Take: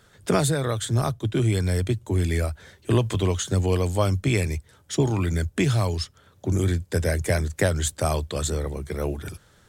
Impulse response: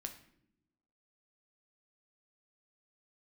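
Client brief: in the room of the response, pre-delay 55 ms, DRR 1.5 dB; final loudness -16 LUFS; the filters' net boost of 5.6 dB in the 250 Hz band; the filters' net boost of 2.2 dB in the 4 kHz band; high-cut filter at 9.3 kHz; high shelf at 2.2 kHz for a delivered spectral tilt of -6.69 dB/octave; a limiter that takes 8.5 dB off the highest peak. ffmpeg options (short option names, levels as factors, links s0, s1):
-filter_complex "[0:a]lowpass=9300,equalizer=f=250:t=o:g=8,highshelf=f=2200:g=-4,equalizer=f=4000:t=o:g=6.5,alimiter=limit=0.211:level=0:latency=1,asplit=2[s0][s1];[1:a]atrim=start_sample=2205,adelay=55[s2];[s1][s2]afir=irnorm=-1:irlink=0,volume=1.19[s3];[s0][s3]amix=inputs=2:normalize=0,volume=2"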